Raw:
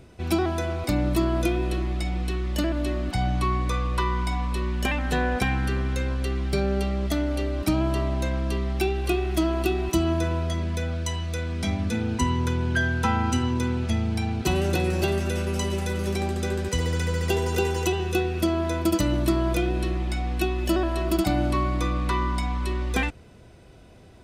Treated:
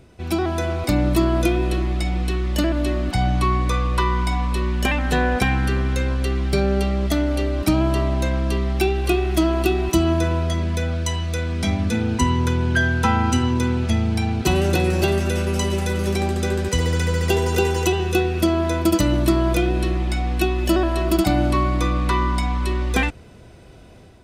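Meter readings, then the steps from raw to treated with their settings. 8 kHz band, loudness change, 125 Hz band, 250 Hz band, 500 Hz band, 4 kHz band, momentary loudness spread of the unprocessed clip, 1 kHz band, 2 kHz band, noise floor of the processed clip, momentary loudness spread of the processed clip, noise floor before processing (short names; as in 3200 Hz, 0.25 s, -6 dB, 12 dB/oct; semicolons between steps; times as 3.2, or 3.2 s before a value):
+5.0 dB, +5.0 dB, +5.0 dB, +5.0 dB, +5.0 dB, +5.0 dB, 4 LU, +5.0 dB, +5.0 dB, -43 dBFS, 4 LU, -48 dBFS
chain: AGC gain up to 5 dB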